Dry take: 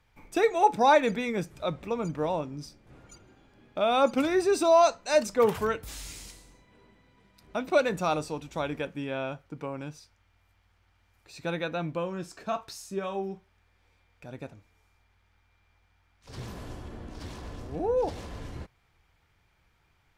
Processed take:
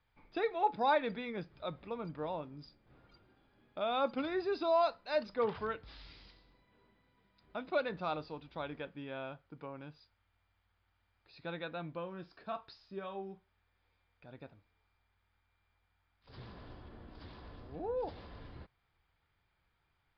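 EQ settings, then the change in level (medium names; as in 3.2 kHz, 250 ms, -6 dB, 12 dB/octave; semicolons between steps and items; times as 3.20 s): rippled Chebyshev low-pass 5 kHz, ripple 3 dB; -8.0 dB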